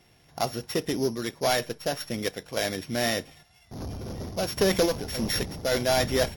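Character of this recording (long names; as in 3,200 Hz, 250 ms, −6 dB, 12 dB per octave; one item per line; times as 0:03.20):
a buzz of ramps at a fixed pitch in blocks of 8 samples
sample-and-hold tremolo
MP3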